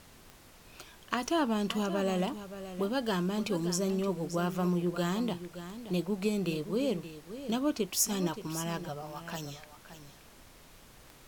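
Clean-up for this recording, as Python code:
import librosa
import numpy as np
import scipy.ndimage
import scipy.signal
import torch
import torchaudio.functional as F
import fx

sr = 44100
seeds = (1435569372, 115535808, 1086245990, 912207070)

y = fx.fix_declick_ar(x, sr, threshold=10.0)
y = fx.noise_reduce(y, sr, print_start_s=0.15, print_end_s=0.65, reduce_db=23.0)
y = fx.fix_echo_inverse(y, sr, delay_ms=573, level_db=-12.0)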